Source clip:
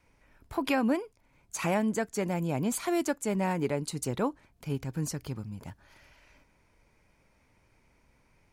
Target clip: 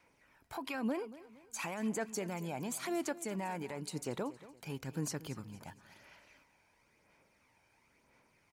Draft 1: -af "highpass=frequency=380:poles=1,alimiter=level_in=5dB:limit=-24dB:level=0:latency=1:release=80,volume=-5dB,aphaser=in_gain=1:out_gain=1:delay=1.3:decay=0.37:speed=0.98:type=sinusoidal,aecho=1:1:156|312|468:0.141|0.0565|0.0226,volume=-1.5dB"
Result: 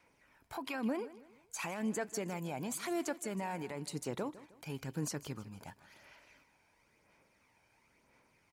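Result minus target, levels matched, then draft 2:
echo 76 ms early
-af "highpass=frequency=380:poles=1,alimiter=level_in=5dB:limit=-24dB:level=0:latency=1:release=80,volume=-5dB,aphaser=in_gain=1:out_gain=1:delay=1.3:decay=0.37:speed=0.98:type=sinusoidal,aecho=1:1:232|464|696:0.141|0.0565|0.0226,volume=-1.5dB"

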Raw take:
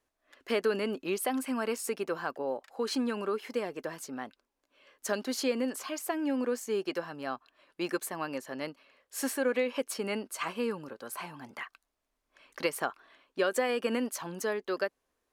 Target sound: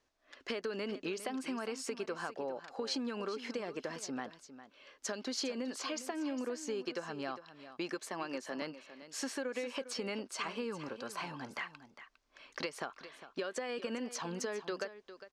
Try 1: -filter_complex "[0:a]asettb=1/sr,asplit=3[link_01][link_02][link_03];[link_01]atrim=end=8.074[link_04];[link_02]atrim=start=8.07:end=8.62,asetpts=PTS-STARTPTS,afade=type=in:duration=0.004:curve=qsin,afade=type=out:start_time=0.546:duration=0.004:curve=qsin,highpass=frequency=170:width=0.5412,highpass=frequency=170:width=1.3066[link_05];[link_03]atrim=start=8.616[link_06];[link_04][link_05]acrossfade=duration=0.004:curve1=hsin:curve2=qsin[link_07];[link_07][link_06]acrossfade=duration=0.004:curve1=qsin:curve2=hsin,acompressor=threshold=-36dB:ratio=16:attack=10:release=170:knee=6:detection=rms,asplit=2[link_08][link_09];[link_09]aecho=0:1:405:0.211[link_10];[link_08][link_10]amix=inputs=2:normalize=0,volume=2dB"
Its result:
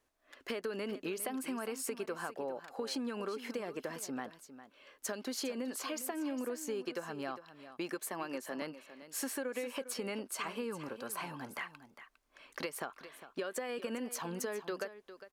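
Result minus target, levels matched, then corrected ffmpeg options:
4,000 Hz band −3.0 dB
-filter_complex "[0:a]asettb=1/sr,asplit=3[link_01][link_02][link_03];[link_01]atrim=end=8.074[link_04];[link_02]atrim=start=8.07:end=8.62,asetpts=PTS-STARTPTS,afade=type=in:duration=0.004:curve=qsin,afade=type=out:start_time=0.546:duration=0.004:curve=qsin,highpass=frequency=170:width=0.5412,highpass=frequency=170:width=1.3066[link_05];[link_03]atrim=start=8.616[link_06];[link_04][link_05]acrossfade=duration=0.004:curve1=hsin:curve2=qsin[link_07];[link_07][link_06]acrossfade=duration=0.004:curve1=qsin:curve2=hsin,acompressor=threshold=-36dB:ratio=16:attack=10:release=170:knee=6:detection=rms,lowpass=frequency=5600:width_type=q:width=1.5,asplit=2[link_08][link_09];[link_09]aecho=0:1:405:0.211[link_10];[link_08][link_10]amix=inputs=2:normalize=0,volume=2dB"

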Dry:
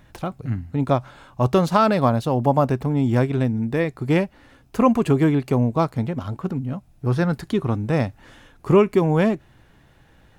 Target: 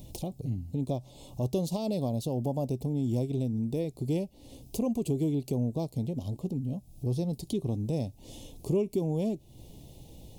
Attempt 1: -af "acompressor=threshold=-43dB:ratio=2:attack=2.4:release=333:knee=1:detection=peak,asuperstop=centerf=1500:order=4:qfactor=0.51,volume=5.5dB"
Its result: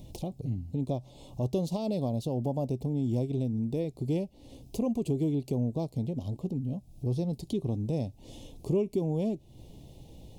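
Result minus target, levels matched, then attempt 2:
8,000 Hz band −5.5 dB
-af "acompressor=threshold=-43dB:ratio=2:attack=2.4:release=333:knee=1:detection=peak,asuperstop=centerf=1500:order=4:qfactor=0.51,highshelf=frequency=6800:gain=9.5,volume=5.5dB"

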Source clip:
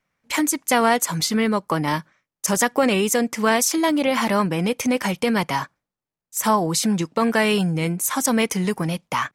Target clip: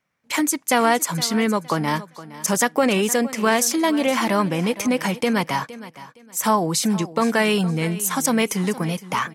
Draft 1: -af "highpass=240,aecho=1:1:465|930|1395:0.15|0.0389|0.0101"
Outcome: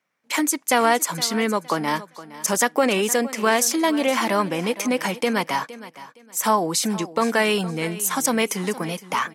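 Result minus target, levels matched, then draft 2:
125 Hz band −5.5 dB
-af "highpass=77,aecho=1:1:465|930|1395:0.15|0.0389|0.0101"

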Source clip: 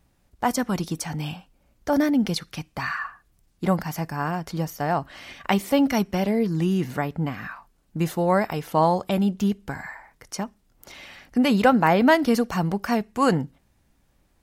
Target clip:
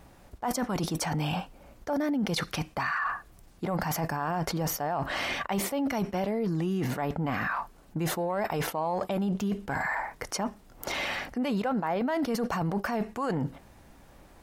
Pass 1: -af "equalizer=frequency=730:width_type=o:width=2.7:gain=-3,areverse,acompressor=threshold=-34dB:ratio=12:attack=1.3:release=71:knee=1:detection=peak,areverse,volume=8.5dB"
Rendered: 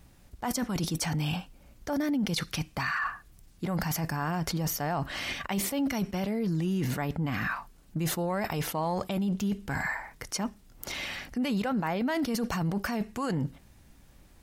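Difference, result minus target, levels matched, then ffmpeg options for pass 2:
1,000 Hz band −3.0 dB
-af "equalizer=frequency=730:width_type=o:width=2.7:gain=7.5,areverse,acompressor=threshold=-34dB:ratio=12:attack=1.3:release=71:knee=1:detection=peak,areverse,volume=8.5dB"

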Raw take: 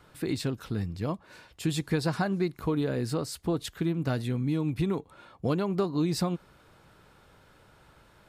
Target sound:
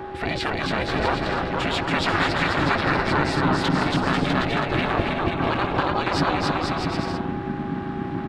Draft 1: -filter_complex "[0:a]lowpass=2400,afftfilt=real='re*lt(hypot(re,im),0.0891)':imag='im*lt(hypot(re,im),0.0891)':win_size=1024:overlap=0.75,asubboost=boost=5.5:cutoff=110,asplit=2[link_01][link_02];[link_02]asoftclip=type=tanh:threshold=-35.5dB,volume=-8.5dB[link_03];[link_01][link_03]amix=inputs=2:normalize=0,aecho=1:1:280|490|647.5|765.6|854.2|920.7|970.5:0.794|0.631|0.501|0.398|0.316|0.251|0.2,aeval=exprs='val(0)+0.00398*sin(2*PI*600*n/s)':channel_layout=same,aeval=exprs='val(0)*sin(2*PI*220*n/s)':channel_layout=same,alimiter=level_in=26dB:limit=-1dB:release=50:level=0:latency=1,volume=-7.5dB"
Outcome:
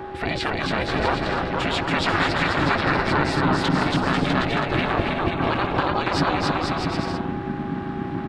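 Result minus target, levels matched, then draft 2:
soft clipping: distortion −7 dB
-filter_complex "[0:a]lowpass=2400,afftfilt=real='re*lt(hypot(re,im),0.0891)':imag='im*lt(hypot(re,im),0.0891)':win_size=1024:overlap=0.75,asubboost=boost=5.5:cutoff=110,asplit=2[link_01][link_02];[link_02]asoftclip=type=tanh:threshold=-43dB,volume=-8.5dB[link_03];[link_01][link_03]amix=inputs=2:normalize=0,aecho=1:1:280|490|647.5|765.6|854.2|920.7|970.5:0.794|0.631|0.501|0.398|0.316|0.251|0.2,aeval=exprs='val(0)+0.00398*sin(2*PI*600*n/s)':channel_layout=same,aeval=exprs='val(0)*sin(2*PI*220*n/s)':channel_layout=same,alimiter=level_in=26dB:limit=-1dB:release=50:level=0:latency=1,volume=-7.5dB"

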